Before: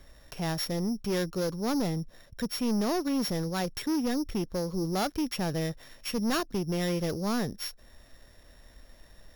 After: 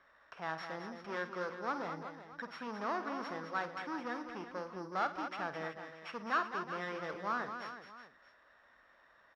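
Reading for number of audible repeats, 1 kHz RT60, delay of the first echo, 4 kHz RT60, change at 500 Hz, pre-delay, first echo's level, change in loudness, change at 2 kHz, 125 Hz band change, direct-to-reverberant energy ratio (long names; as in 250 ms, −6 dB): 5, no reverb audible, 50 ms, no reverb audible, −9.5 dB, no reverb audible, −12.0 dB, −9.0 dB, 0.0 dB, −19.5 dB, no reverb audible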